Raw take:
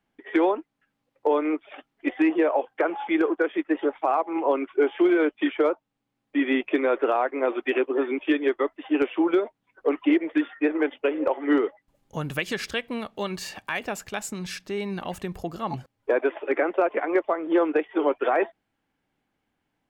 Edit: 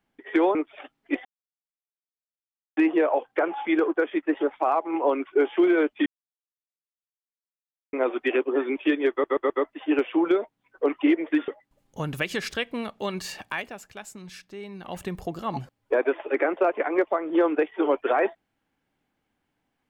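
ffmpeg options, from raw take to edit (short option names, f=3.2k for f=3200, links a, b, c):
-filter_complex "[0:a]asplit=11[a][b][c][d][e][f][g][h][i][j][k];[a]atrim=end=0.552[l];[b]atrim=start=1.488:end=2.19,asetpts=PTS-STARTPTS,afade=t=out:st=0.698:d=0.004:c=hsin,apad=pad_dur=1.52[m];[c]atrim=start=2.19:end=5.48,asetpts=PTS-STARTPTS,afade=t=in:d=0.004:c=hsin,afade=t=out:st=3.286:d=0.004:c=hsin[n];[d]atrim=start=5.48:end=7.35,asetpts=PTS-STARTPTS,volume=0[o];[e]atrim=start=7.35:end=8.662,asetpts=PTS-STARTPTS,afade=t=in:d=0.004:c=hsin[p];[f]atrim=start=8.528:end=8.662[q];[g]atrim=start=8.528:end=8.662[r];[h]atrim=start=8.528:end=10.512[s];[i]atrim=start=11.648:end=13.89,asetpts=PTS-STARTPTS,afade=t=out:st=2.042:d=0.2:silence=0.354813[t];[j]atrim=start=13.89:end=14.98,asetpts=PTS-STARTPTS,volume=-9dB[u];[k]atrim=start=14.98,asetpts=PTS-STARTPTS,afade=t=in:d=0.2:silence=0.354813[v];[m][n][o][p]concat=n=4:v=0:a=1[w];[l][w]acrossfade=d=0.004:c1=hsin:c2=hsin[x];[x][q]acrossfade=d=0.004:c1=hsin:c2=hsin[y];[y][r]acrossfade=d=0.004:c1=hsin:c2=hsin[z];[z][s]acrossfade=d=0.004:c1=hsin:c2=hsin[aa];[t][u][v]concat=n=3:v=0:a=1[ab];[aa][ab]acrossfade=d=0.004:c1=hsin:c2=hsin"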